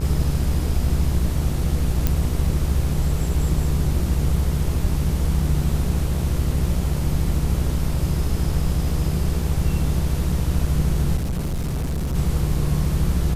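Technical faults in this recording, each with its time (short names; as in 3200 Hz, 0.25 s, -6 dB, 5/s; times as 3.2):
buzz 60 Hz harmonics 23 -25 dBFS
2.07 pop
11.17–12.15 clipped -21 dBFS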